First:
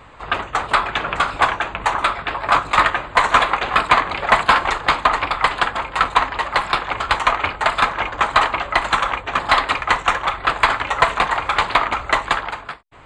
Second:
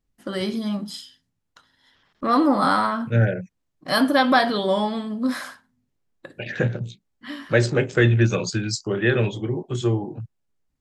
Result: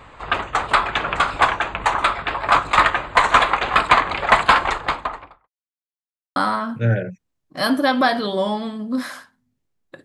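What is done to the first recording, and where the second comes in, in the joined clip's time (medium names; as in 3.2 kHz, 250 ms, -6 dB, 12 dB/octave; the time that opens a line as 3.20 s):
first
4.51–5.49 s: studio fade out
5.49–6.36 s: mute
6.36 s: go over to second from 2.67 s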